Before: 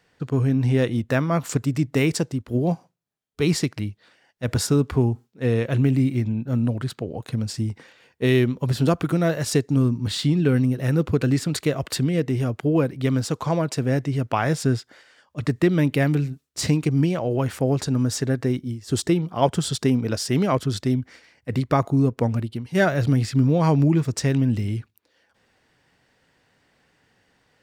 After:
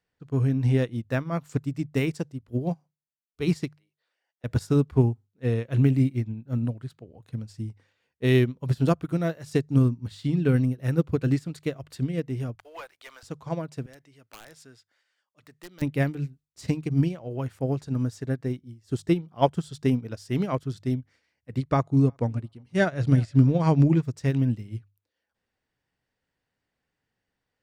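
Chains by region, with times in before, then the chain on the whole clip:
3.75–4.44 s: high-pass 390 Hz 24 dB/octave + compression 2.5:1, threshold -57 dBFS
12.55–13.23 s: high-pass 750 Hz 24 dB/octave + waveshaping leveller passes 3
13.86–15.82 s: high-pass 1.1 kHz 6 dB/octave + integer overflow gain 17.5 dB
21.57–24.01 s: low-pass 10 kHz 24 dB/octave + feedback delay 359 ms, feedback 18%, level -23 dB
whole clip: bass shelf 92 Hz +10 dB; hum notches 50/100/150 Hz; upward expansion 2.5:1, over -26 dBFS

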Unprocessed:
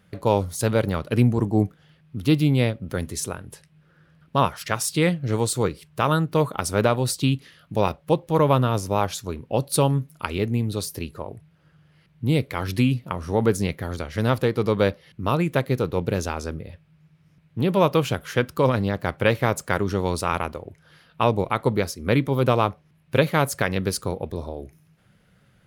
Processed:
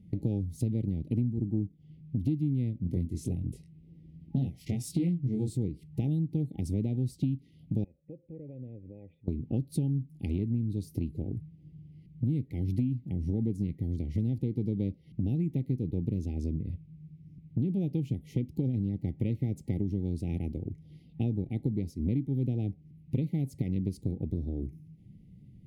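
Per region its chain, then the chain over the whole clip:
2.82–5.57 s: doubling 23 ms -3 dB + loudspeaker Doppler distortion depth 0.19 ms
7.84–9.28 s: cascade formant filter e + compression 2:1, threshold -46 dBFS
whole clip: FFT band-reject 830–1900 Hz; FFT filter 300 Hz 0 dB, 600 Hz -26 dB, 900 Hz -23 dB; compression 6:1, threshold -35 dBFS; trim +7.5 dB

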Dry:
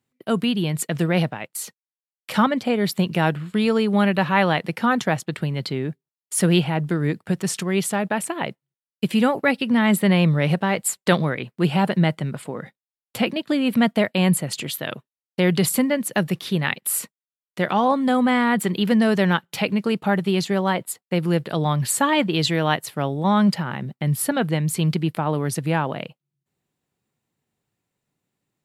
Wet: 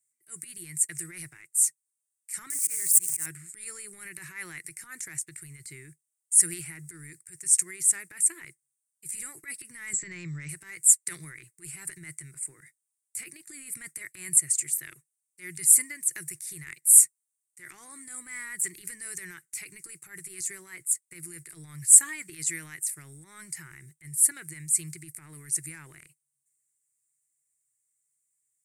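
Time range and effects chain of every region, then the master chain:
2.50–3.26 s: zero-crossing glitches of -19.5 dBFS + peaking EQ 1.1 kHz +3 dB 0.3 oct + slow attack 143 ms
9.93–10.49 s: brick-wall FIR low-pass 8 kHz + bass shelf 470 Hz +5.5 dB
whole clip: pre-emphasis filter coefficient 0.97; transient shaper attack -11 dB, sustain +5 dB; FFT filter 150 Hz 0 dB, 220 Hz -22 dB, 340 Hz -3 dB, 550 Hz -26 dB, 830 Hz -25 dB, 2.1 kHz -3 dB, 3.2 kHz -28 dB, 8.7 kHz +11 dB, 13 kHz -9 dB; trim +5.5 dB

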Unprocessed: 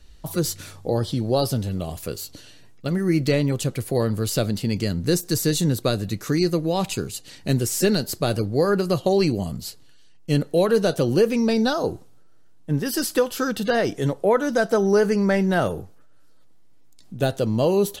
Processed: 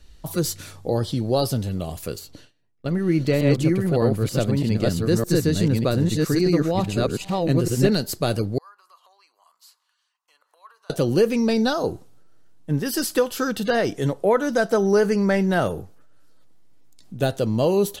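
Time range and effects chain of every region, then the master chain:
2.19–7.92 s: chunks repeated in reverse 610 ms, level -0.5 dB + gate with hold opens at -32 dBFS, closes at -35 dBFS + treble shelf 3.7 kHz -9.5 dB
8.58–10.90 s: compression 8:1, threshold -34 dBFS + ladder high-pass 990 Hz, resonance 75%
whole clip: none

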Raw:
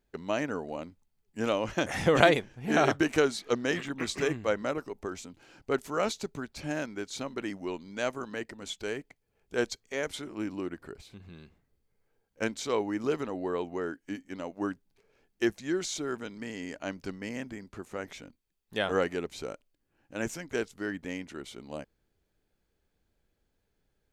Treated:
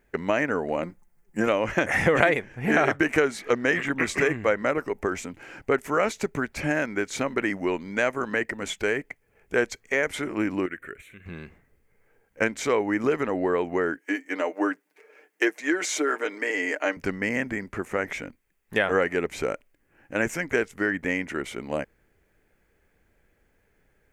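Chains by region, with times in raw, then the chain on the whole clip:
0.82–1.48 s: peaking EQ 2.7 kHz -7.5 dB 1.2 oct + comb 5.7 ms, depth 68%
10.66–11.26 s: bass shelf 500 Hz -12 dB + static phaser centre 2.1 kHz, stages 4
13.99–16.97 s: high-pass 310 Hz 24 dB/octave + comb 6.6 ms, depth 59%
whole clip: graphic EQ 500/2000/4000 Hz +3/+11/-10 dB; compression 2.5:1, threshold -31 dBFS; trim +9 dB

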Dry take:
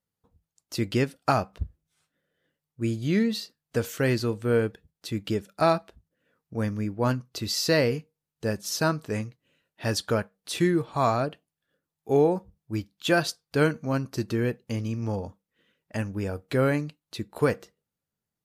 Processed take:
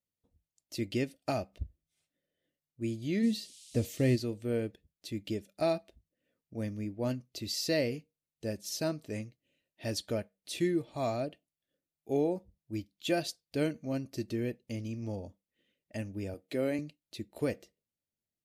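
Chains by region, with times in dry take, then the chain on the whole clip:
3.22–4.15 s: bass shelf 250 Hz +11 dB + band-stop 1.5 kHz, Q 7.7 + band noise 3–10 kHz -48 dBFS
16.34–16.79 s: high-pass 190 Hz + band-stop 5.5 kHz, Q 29
whole clip: high-order bell 1.2 kHz -11 dB 1.1 oct; comb 3.3 ms, depth 31%; trim -7.5 dB

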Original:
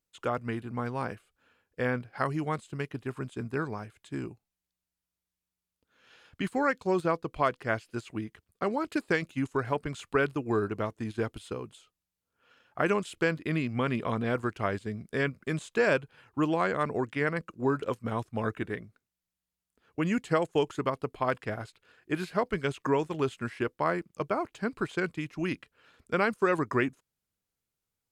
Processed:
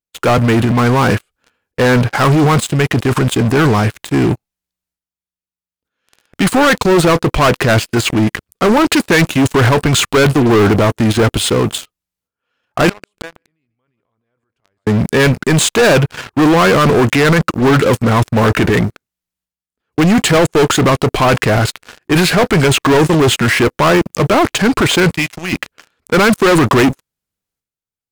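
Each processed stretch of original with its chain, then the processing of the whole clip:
12.89–14.87 s: peaking EQ 210 Hz -5 dB 0.93 oct + inverted gate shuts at -32 dBFS, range -33 dB + feedback delay 145 ms, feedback 36%, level -18 dB
25.13–25.53 s: amplifier tone stack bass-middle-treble 5-5-5 + doubling 17 ms -9 dB
whole clip: waveshaping leveller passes 1; transient shaper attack -3 dB, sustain +11 dB; waveshaping leveller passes 5; trim +4.5 dB

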